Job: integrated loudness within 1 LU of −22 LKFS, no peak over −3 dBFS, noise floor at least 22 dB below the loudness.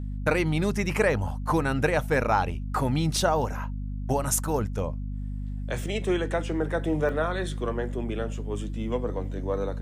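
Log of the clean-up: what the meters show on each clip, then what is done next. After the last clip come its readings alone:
number of dropouts 2; longest dropout 1.8 ms; mains hum 50 Hz; hum harmonics up to 250 Hz; level of the hum −30 dBFS; integrated loudness −27.5 LKFS; sample peak −10.5 dBFS; target loudness −22.0 LKFS
→ repair the gap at 0:03.16/0:07.09, 1.8 ms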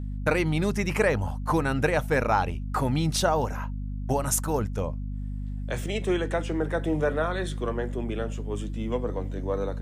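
number of dropouts 0; mains hum 50 Hz; hum harmonics up to 250 Hz; level of the hum −30 dBFS
→ hum removal 50 Hz, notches 5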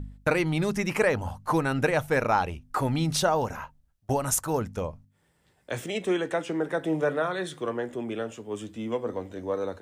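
mains hum none found; integrated loudness −28.0 LKFS; sample peak −11.5 dBFS; target loudness −22.0 LKFS
→ level +6 dB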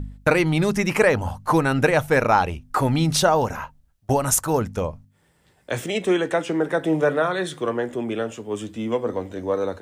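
integrated loudness −22.0 LKFS; sample peak −5.5 dBFS; background noise floor −62 dBFS

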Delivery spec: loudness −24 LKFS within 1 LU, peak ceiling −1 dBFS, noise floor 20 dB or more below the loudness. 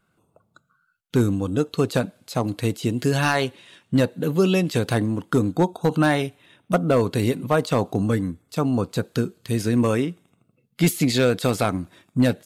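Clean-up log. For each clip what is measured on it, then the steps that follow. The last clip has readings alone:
share of clipped samples 0.6%; peaks flattened at −10.0 dBFS; integrated loudness −23.0 LKFS; sample peak −10.0 dBFS; target loudness −24.0 LKFS
→ clipped peaks rebuilt −10 dBFS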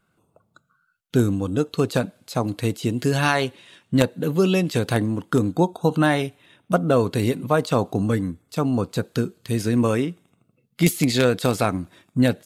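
share of clipped samples 0.0%; integrated loudness −22.5 LKFS; sample peak −1.0 dBFS; target loudness −24.0 LKFS
→ level −1.5 dB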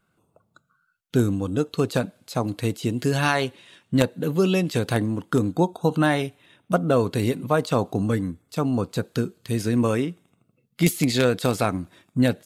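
integrated loudness −24.0 LKFS; sample peak −2.5 dBFS; background noise floor −70 dBFS

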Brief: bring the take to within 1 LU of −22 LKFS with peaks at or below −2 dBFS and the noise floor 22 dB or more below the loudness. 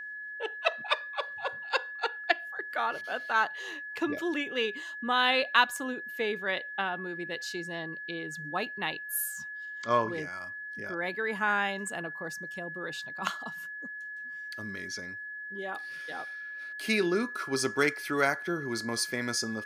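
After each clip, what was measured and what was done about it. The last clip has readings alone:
interfering tone 1,700 Hz; level of the tone −38 dBFS; integrated loudness −31.5 LKFS; sample peak −8.5 dBFS; target loudness −22.0 LKFS
→ notch filter 1,700 Hz, Q 30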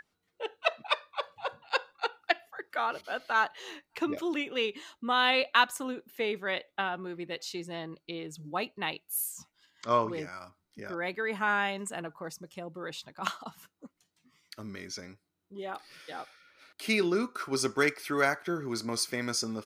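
interfering tone none found; integrated loudness −31.5 LKFS; sample peak −9.5 dBFS; target loudness −22.0 LKFS
→ level +9.5 dB
brickwall limiter −2 dBFS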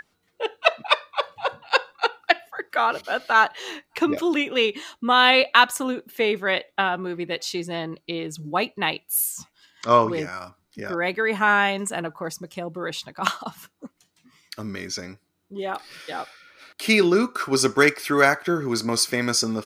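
integrated loudness −22.5 LKFS; sample peak −2.0 dBFS; background noise floor −70 dBFS

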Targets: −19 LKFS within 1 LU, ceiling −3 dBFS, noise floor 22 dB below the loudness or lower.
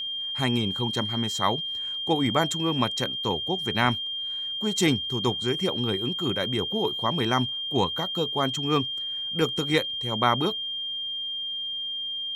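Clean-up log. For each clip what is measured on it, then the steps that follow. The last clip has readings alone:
interfering tone 3,200 Hz; level of the tone −29 dBFS; integrated loudness −26.0 LKFS; sample peak −6.5 dBFS; target loudness −19.0 LKFS
→ notch filter 3,200 Hz, Q 30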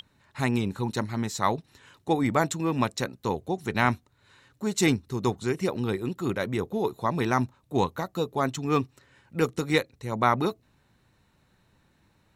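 interfering tone none found; integrated loudness −28.0 LKFS; sample peak −7.0 dBFS; target loudness −19.0 LKFS
→ level +9 dB
brickwall limiter −3 dBFS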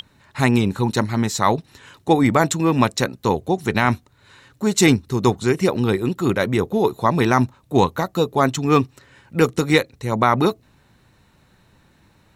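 integrated loudness −19.5 LKFS; sample peak −3.0 dBFS; background noise floor −58 dBFS

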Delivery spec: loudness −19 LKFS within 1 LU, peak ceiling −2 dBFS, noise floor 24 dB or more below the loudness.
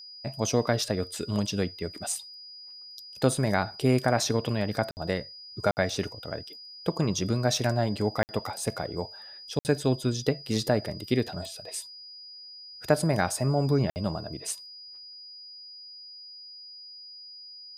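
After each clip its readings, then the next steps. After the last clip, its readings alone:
number of dropouts 5; longest dropout 59 ms; interfering tone 4,900 Hz; level of the tone −43 dBFS; integrated loudness −28.5 LKFS; sample peak −10.0 dBFS; target loudness −19.0 LKFS
→ repair the gap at 0:04.91/0:05.71/0:08.23/0:09.59/0:13.90, 59 ms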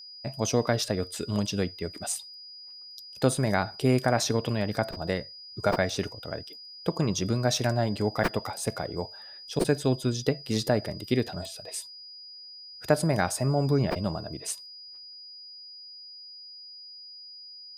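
number of dropouts 0; interfering tone 4,900 Hz; level of the tone −43 dBFS
→ notch filter 4,900 Hz, Q 30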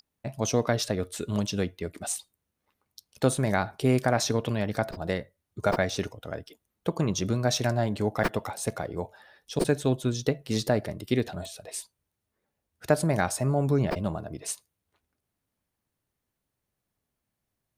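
interfering tone none found; integrated loudness −28.5 LKFS; sample peak −10.0 dBFS; target loudness −19.0 LKFS
→ level +9.5 dB
brickwall limiter −2 dBFS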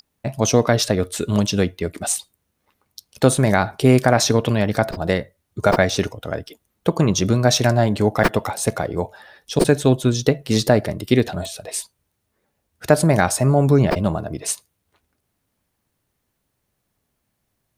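integrated loudness −19.0 LKFS; sample peak −2.0 dBFS; background noise floor −74 dBFS

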